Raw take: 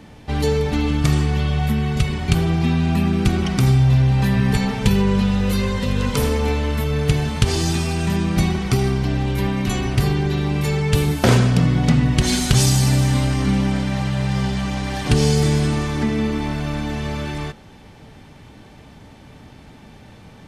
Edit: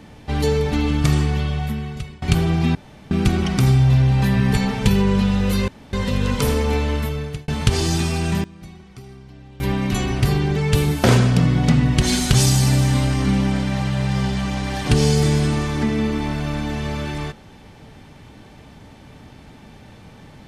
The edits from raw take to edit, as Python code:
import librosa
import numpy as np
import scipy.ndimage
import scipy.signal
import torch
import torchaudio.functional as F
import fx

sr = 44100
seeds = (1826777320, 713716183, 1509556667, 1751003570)

y = fx.edit(x, sr, fx.fade_out_to(start_s=1.22, length_s=1.0, floor_db=-21.5),
    fx.room_tone_fill(start_s=2.75, length_s=0.36),
    fx.insert_room_tone(at_s=5.68, length_s=0.25),
    fx.fade_out_span(start_s=6.69, length_s=0.54),
    fx.fade_down_up(start_s=8.0, length_s=1.54, db=-21.5, fade_s=0.19, curve='log'),
    fx.cut(start_s=10.31, length_s=0.45), tone=tone)